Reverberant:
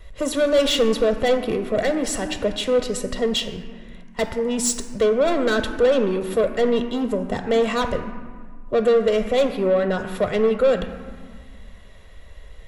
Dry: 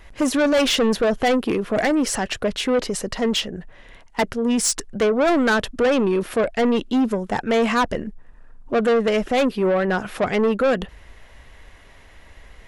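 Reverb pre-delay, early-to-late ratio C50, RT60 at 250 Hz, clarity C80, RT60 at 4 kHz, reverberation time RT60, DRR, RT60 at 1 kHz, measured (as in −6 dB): 3 ms, 8.5 dB, 2.4 s, 10.0 dB, 0.95 s, 1.7 s, 7.0 dB, 1.7 s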